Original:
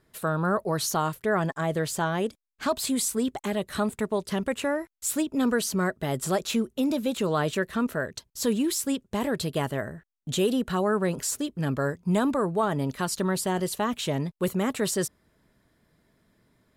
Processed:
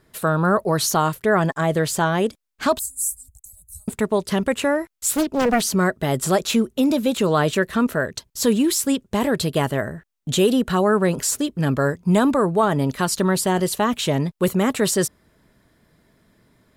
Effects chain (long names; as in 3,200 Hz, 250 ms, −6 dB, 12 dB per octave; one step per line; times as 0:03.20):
0:02.79–0:03.88: inverse Chebyshev band-stop filter 200–3,400 Hz, stop band 50 dB
0:05.14–0:05.66: highs frequency-modulated by the lows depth 0.97 ms
level +7 dB